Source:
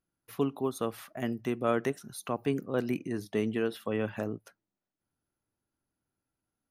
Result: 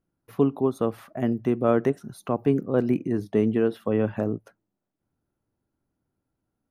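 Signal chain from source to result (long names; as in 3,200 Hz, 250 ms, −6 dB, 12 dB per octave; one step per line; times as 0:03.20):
tilt shelving filter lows +7.5 dB, about 1,500 Hz
level +1.5 dB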